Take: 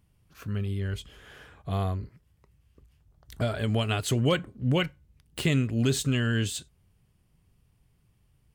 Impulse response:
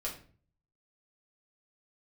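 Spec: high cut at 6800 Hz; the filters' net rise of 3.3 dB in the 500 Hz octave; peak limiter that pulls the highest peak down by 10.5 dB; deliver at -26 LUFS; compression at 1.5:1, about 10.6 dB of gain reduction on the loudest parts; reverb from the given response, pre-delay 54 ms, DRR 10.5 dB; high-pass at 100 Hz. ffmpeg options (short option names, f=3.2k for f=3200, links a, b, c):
-filter_complex "[0:a]highpass=100,lowpass=6.8k,equalizer=f=500:t=o:g=4,acompressor=threshold=-49dB:ratio=1.5,alimiter=level_in=8dB:limit=-24dB:level=0:latency=1,volume=-8dB,asplit=2[a][b];[1:a]atrim=start_sample=2205,adelay=54[c];[b][c]afir=irnorm=-1:irlink=0,volume=-12dB[d];[a][d]amix=inputs=2:normalize=0,volume=17.5dB"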